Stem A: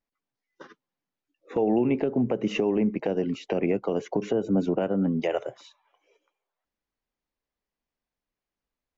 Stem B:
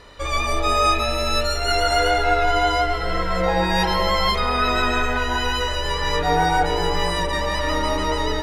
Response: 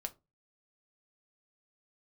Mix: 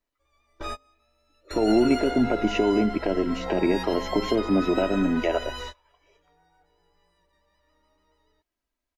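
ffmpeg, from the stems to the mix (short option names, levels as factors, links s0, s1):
-filter_complex "[0:a]aecho=1:1:3.1:0.53,volume=1.19,asplit=2[s0][s1];[1:a]volume=0.224[s2];[s1]apad=whole_len=371646[s3];[s2][s3]sidechaingate=range=0.0224:threshold=0.00447:ratio=16:detection=peak[s4];[s0][s4]amix=inputs=2:normalize=0,bandreject=f=266:t=h:w=4,bandreject=f=532:t=h:w=4,bandreject=f=798:t=h:w=4"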